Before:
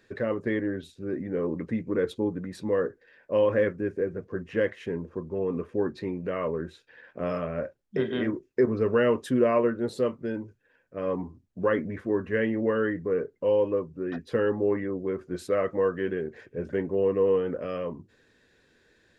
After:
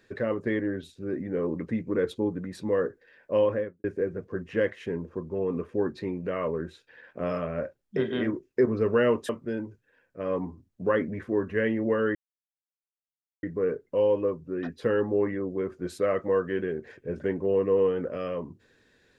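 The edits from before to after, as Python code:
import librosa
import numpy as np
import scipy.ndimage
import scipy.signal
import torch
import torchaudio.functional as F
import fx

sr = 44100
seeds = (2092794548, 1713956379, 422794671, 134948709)

y = fx.studio_fade_out(x, sr, start_s=3.37, length_s=0.47)
y = fx.edit(y, sr, fx.cut(start_s=9.29, length_s=0.77),
    fx.insert_silence(at_s=12.92, length_s=1.28), tone=tone)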